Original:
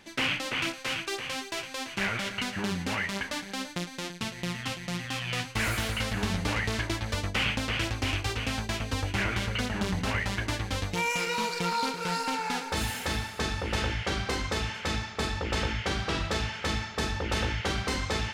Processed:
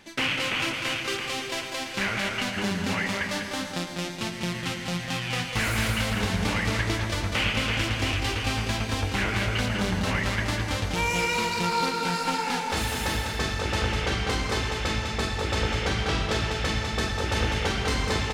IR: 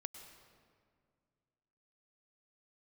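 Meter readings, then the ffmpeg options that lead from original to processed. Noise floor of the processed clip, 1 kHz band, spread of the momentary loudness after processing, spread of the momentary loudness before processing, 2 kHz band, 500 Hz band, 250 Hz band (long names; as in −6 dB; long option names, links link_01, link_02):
−35 dBFS, +3.5 dB, 5 LU, 5 LU, +3.5 dB, +4.0 dB, +3.5 dB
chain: -filter_complex "[0:a]aecho=1:1:199:0.531[link_01];[1:a]atrim=start_sample=2205[link_02];[link_01][link_02]afir=irnorm=-1:irlink=0,volume=6dB"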